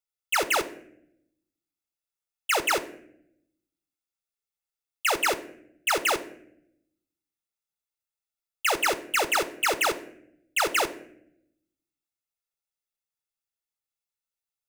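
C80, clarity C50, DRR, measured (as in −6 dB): 18.5 dB, 16.0 dB, 11.5 dB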